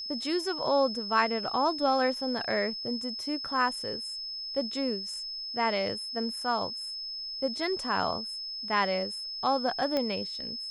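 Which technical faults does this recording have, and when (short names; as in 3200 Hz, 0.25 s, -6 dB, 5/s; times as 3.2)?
tone 5200 Hz -35 dBFS
9.97 pop -16 dBFS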